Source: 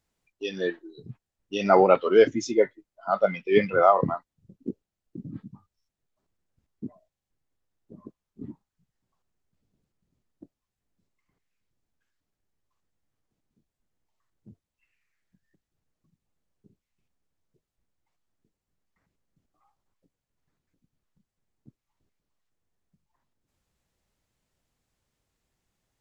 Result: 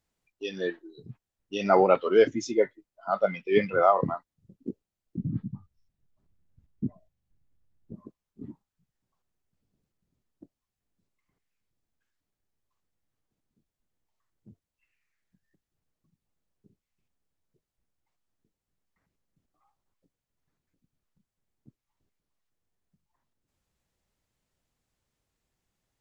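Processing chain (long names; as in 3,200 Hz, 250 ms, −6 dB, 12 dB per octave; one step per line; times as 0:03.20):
0:05.17–0:07.95: bass and treble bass +14 dB, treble −4 dB
level −2.5 dB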